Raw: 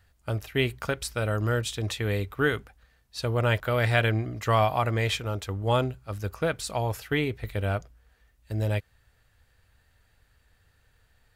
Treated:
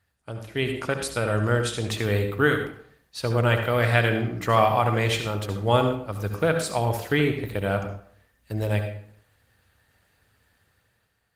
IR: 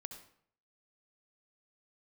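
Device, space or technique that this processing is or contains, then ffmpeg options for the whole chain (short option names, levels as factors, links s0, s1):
far-field microphone of a smart speaker: -filter_complex "[1:a]atrim=start_sample=2205[s0];[0:a][s0]afir=irnorm=-1:irlink=0,highpass=110,dynaudnorm=f=200:g=7:m=2.82" -ar 48000 -c:a libopus -b:a 24k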